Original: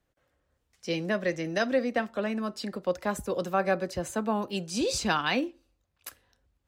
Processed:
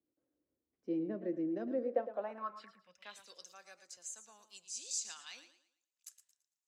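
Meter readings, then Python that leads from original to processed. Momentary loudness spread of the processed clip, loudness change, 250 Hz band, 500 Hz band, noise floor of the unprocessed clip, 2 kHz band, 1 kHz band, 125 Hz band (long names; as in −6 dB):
19 LU, −10.0 dB, −10.0 dB, −11.5 dB, −77 dBFS, −22.5 dB, −15.5 dB, −18.5 dB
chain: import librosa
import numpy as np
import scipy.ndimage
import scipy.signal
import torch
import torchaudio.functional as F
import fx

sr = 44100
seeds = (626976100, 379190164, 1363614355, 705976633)

y = fx.spec_box(x, sr, start_s=2.67, length_s=0.34, low_hz=220.0, high_hz=4900.0, gain_db=-15)
y = fx.filter_sweep_bandpass(y, sr, from_hz=310.0, to_hz=7000.0, start_s=1.67, end_s=3.54, q=4.2)
y = fx.echo_warbled(y, sr, ms=112, feedback_pct=33, rate_hz=2.8, cents=80, wet_db=-12)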